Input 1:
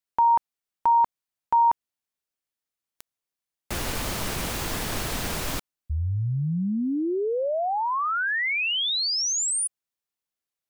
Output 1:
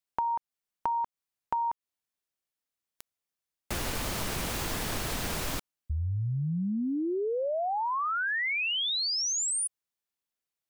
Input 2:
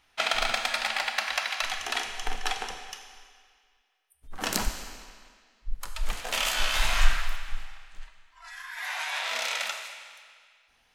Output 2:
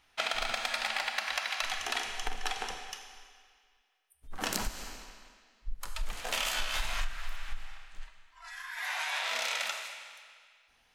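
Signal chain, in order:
downward compressor 12 to 1, threshold −26 dBFS
level −1.5 dB

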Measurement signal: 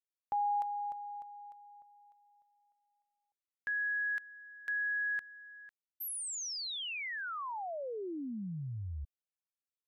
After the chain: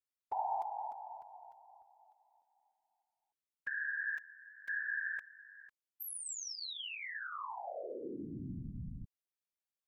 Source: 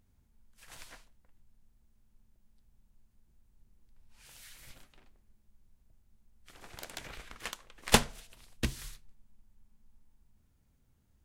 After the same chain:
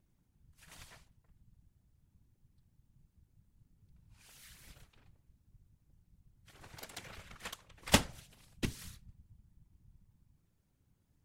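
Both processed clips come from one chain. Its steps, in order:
random phases in short frames
level −4 dB

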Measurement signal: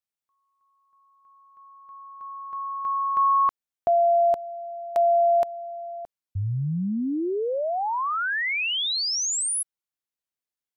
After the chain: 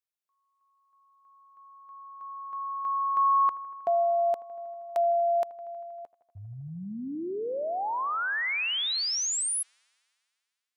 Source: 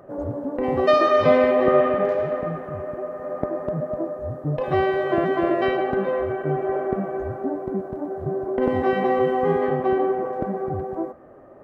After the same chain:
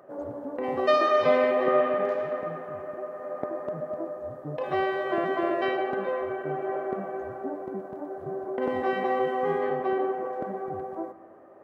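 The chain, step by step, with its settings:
high-pass filter 460 Hz 6 dB per octave
on a send: delay with a low-pass on its return 79 ms, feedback 80%, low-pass 2,000 Hz, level −19 dB
on the sum: level −3 dB

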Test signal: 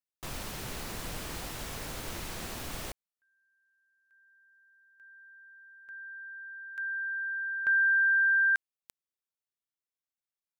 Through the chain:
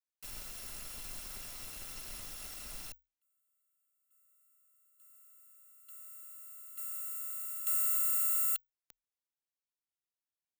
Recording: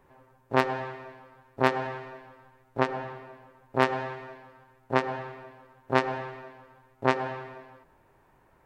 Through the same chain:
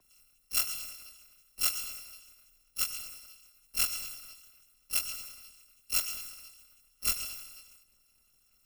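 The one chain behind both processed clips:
samples in bit-reversed order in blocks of 256 samples
frequency shifter −32 Hz
level −6 dB

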